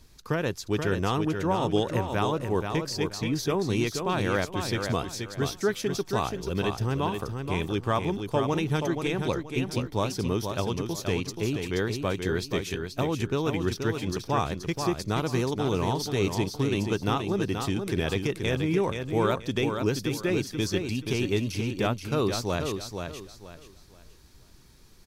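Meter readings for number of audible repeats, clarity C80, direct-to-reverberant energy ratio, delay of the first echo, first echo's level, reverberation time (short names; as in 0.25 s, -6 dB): 3, none, none, 0.479 s, -6.0 dB, none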